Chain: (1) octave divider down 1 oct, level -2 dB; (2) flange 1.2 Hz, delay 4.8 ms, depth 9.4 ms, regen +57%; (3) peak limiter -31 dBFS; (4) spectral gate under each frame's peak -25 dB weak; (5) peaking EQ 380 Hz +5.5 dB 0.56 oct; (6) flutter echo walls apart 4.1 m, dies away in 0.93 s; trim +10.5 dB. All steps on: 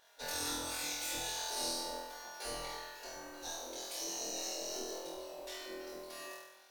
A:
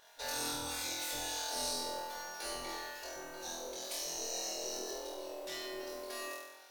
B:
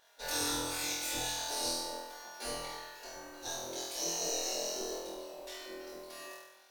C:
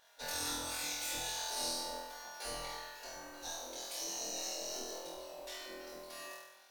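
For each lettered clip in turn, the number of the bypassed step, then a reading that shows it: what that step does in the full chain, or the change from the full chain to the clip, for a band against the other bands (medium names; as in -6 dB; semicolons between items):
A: 2, momentary loudness spread change -2 LU; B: 3, mean gain reduction 1.5 dB; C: 5, 250 Hz band -2.5 dB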